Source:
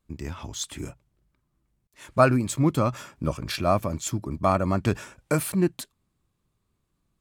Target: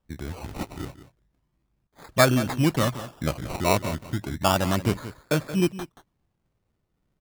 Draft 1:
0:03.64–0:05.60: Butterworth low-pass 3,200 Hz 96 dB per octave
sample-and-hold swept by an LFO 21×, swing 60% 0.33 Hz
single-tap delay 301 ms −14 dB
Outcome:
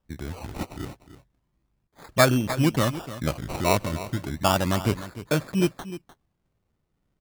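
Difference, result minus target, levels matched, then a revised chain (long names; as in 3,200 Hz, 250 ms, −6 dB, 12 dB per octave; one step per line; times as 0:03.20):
echo 122 ms late
0:03.64–0:05.60: Butterworth low-pass 3,200 Hz 96 dB per octave
sample-and-hold swept by an LFO 21×, swing 60% 0.33 Hz
single-tap delay 179 ms −14 dB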